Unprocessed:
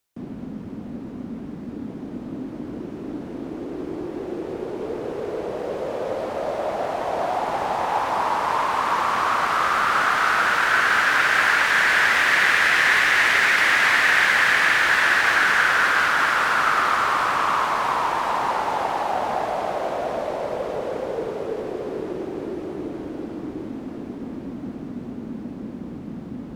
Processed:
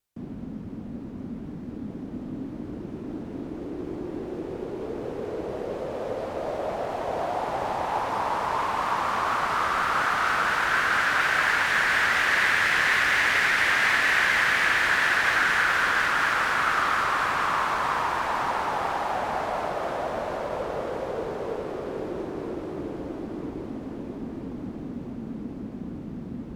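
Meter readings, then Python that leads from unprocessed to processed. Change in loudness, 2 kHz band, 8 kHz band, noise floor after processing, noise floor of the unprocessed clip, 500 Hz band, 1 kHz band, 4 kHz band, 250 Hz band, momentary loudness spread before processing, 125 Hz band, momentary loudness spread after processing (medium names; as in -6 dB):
-4.5 dB, -4.5 dB, -4.5 dB, -38 dBFS, -35 dBFS, -4.0 dB, -4.0 dB, -4.5 dB, -3.0 dB, 18 LU, -0.5 dB, 16 LU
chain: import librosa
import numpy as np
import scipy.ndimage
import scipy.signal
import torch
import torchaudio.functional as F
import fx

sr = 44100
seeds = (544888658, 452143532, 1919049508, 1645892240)

y = fx.vibrato(x, sr, rate_hz=4.2, depth_cents=38.0)
y = fx.low_shelf(y, sr, hz=130.0, db=8.5)
y = fx.echo_feedback(y, sr, ms=987, feedback_pct=55, wet_db=-9.5)
y = y * librosa.db_to_amplitude(-5.0)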